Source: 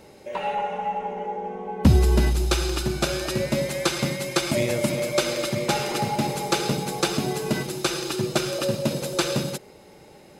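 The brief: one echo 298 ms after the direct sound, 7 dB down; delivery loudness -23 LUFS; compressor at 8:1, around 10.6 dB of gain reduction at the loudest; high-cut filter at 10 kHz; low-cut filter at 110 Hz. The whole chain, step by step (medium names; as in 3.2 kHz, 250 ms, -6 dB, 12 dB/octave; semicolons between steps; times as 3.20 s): high-pass 110 Hz; low-pass 10 kHz; compression 8:1, threshold -24 dBFS; delay 298 ms -7 dB; trim +5.5 dB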